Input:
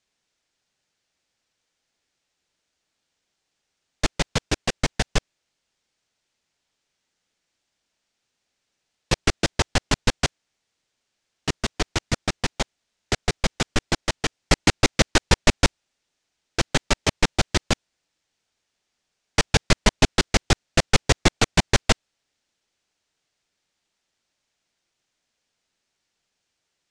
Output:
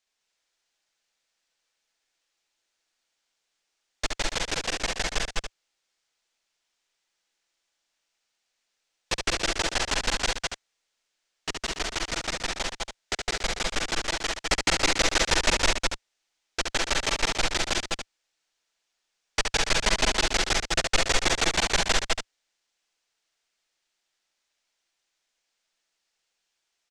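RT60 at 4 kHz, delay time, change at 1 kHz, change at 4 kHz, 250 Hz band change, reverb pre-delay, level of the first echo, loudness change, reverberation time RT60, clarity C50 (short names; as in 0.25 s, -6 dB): none, 69 ms, -2.0 dB, -0.5 dB, -9.5 dB, none, -5.0 dB, -2.5 dB, none, none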